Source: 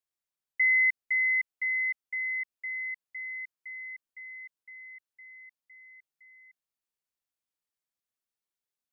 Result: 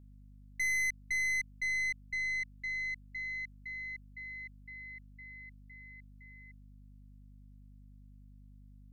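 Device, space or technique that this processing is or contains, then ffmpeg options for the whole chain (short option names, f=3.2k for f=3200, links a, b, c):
valve amplifier with mains hum: -af "aeval=exprs='(tanh(31.6*val(0)+0.3)-tanh(0.3))/31.6':c=same,aeval=exprs='val(0)+0.002*(sin(2*PI*50*n/s)+sin(2*PI*2*50*n/s)/2+sin(2*PI*3*50*n/s)/3+sin(2*PI*4*50*n/s)/4+sin(2*PI*5*50*n/s)/5)':c=same"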